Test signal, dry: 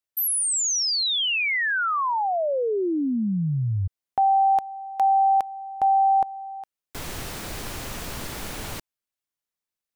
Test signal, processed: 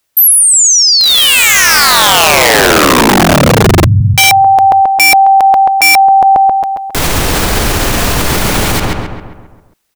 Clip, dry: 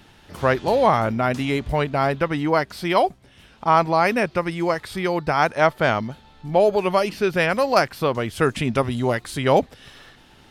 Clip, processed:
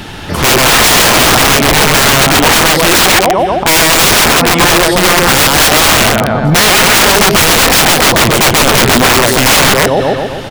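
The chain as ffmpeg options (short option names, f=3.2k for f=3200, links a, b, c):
-filter_complex "[0:a]asplit=2[a][b];[b]adelay=134,lowpass=f=2.6k:p=1,volume=-3dB,asplit=2[c][d];[d]adelay=134,lowpass=f=2.6k:p=1,volume=0.54,asplit=2[e][f];[f]adelay=134,lowpass=f=2.6k:p=1,volume=0.54,asplit=2[g][h];[h]adelay=134,lowpass=f=2.6k:p=1,volume=0.54,asplit=2[i][j];[j]adelay=134,lowpass=f=2.6k:p=1,volume=0.54,asplit=2[k][l];[l]adelay=134,lowpass=f=2.6k:p=1,volume=0.54,asplit=2[m][n];[n]adelay=134,lowpass=f=2.6k:p=1,volume=0.54[o];[a][c][e][g][i][k][m][o]amix=inputs=8:normalize=0,aeval=exprs='(mod(7.94*val(0)+1,2)-1)/7.94':c=same,alimiter=level_in=25.5dB:limit=-1dB:release=50:level=0:latency=1,volume=-1dB"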